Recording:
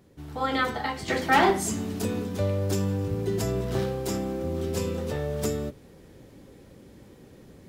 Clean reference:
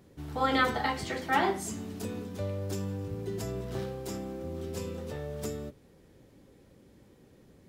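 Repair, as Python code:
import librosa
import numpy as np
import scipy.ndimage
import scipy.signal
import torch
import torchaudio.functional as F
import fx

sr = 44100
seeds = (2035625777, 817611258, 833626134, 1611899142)

y = fx.fix_declip(x, sr, threshold_db=-14.0)
y = fx.gain(y, sr, db=fx.steps((0.0, 0.0), (1.08, -8.0)))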